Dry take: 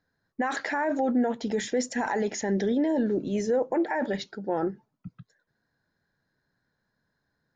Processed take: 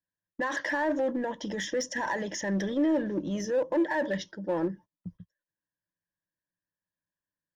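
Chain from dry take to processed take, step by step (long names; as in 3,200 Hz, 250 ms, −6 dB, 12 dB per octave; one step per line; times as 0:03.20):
EQ curve with evenly spaced ripples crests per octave 1.2, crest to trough 13 dB
noise gate −43 dBFS, range −20 dB
in parallel at −6 dB: hard clipping −27.5 dBFS, distortion −6 dB
on the sum: level −6 dB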